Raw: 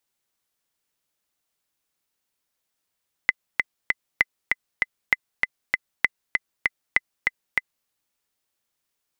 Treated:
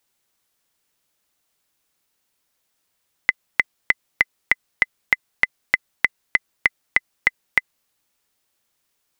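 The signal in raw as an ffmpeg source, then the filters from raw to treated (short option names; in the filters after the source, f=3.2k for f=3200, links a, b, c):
-f lavfi -i "aevalsrc='pow(10,(-3.5-3*gte(mod(t,3*60/196),60/196))/20)*sin(2*PI*2030*mod(t,60/196))*exp(-6.91*mod(t,60/196)/0.03)':d=4.59:s=44100"
-af "alimiter=level_in=7dB:limit=-1dB:release=50:level=0:latency=1"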